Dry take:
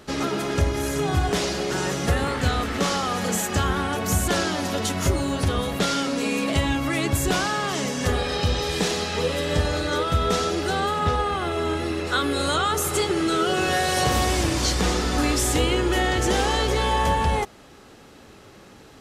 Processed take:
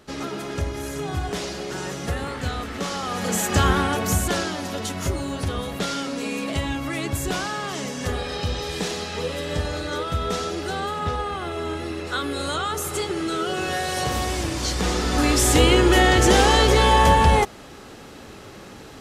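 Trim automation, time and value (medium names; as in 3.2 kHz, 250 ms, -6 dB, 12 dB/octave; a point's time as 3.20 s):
2.90 s -5 dB
3.67 s +5 dB
4.59 s -3.5 dB
14.58 s -3.5 dB
15.67 s +6 dB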